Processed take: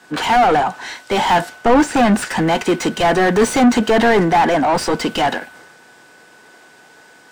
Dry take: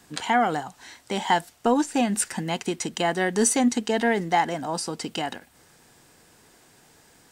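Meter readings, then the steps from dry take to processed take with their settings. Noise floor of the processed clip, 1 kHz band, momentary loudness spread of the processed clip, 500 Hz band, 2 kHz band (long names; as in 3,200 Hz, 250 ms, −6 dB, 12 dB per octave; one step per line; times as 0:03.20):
−47 dBFS, +10.0 dB, 6 LU, +10.5 dB, +9.5 dB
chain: mid-hump overdrive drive 32 dB, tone 1,100 Hz, clips at −8 dBFS
steady tone 1,500 Hz −38 dBFS
multiband upward and downward expander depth 70%
level +3.5 dB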